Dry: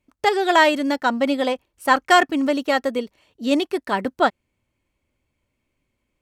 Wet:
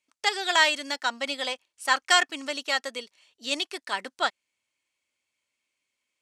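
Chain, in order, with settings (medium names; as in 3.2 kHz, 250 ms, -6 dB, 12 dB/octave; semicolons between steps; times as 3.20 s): frequency weighting ITU-R 468; trim -8 dB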